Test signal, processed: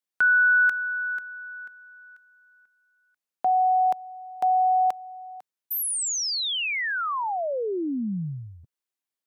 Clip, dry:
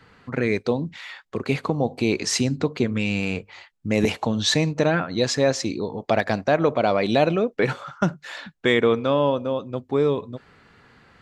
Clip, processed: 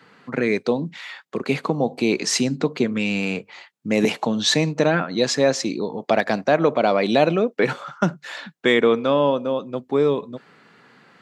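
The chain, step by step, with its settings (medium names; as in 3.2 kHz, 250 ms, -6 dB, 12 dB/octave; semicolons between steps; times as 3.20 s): high-pass 150 Hz 24 dB/octave; trim +2 dB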